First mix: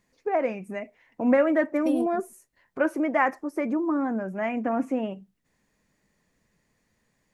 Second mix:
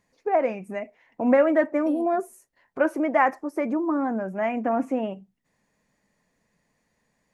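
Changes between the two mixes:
second voice -10.5 dB; master: add peaking EQ 750 Hz +4 dB 1.1 oct

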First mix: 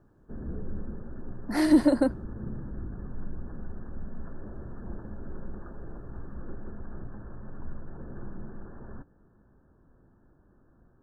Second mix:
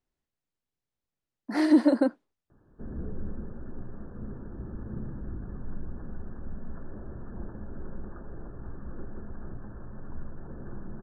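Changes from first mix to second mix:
background: entry +2.50 s; master: add distance through air 60 m

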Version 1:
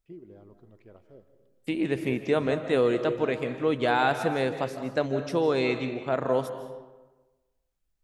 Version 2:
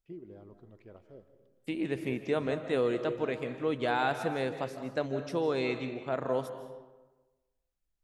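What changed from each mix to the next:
second voice -5.5 dB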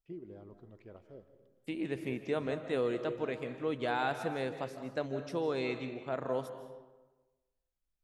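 second voice -3.5 dB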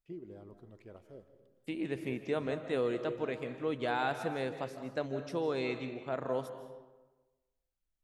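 first voice: remove distance through air 96 m

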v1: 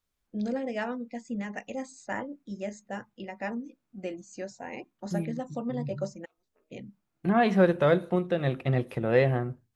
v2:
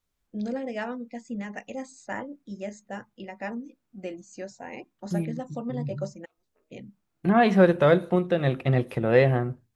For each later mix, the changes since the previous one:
second voice +3.5 dB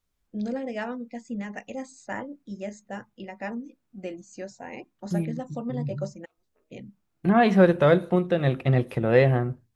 master: add bass shelf 150 Hz +3 dB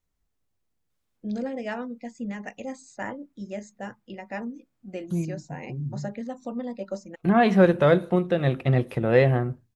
first voice: entry +0.90 s

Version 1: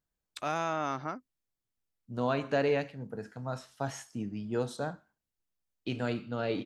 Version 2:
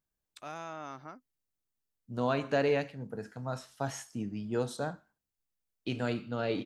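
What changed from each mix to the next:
first voice -10.0 dB; master: add treble shelf 8.2 kHz +5 dB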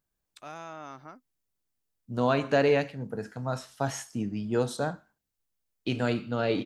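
second voice +5.0 dB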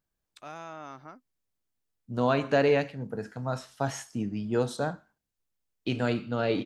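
master: add treble shelf 8.2 kHz -5 dB

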